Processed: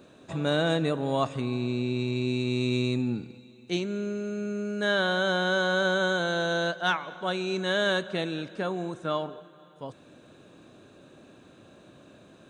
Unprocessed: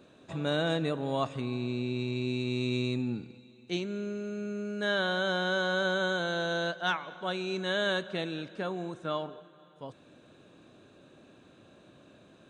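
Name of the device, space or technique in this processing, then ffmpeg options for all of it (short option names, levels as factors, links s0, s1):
exciter from parts: -filter_complex "[0:a]asplit=2[s0][s1];[s1]highpass=f=3000:p=1,asoftclip=type=tanh:threshold=0.0335,highpass=3500,volume=0.422[s2];[s0][s2]amix=inputs=2:normalize=0,volume=1.58"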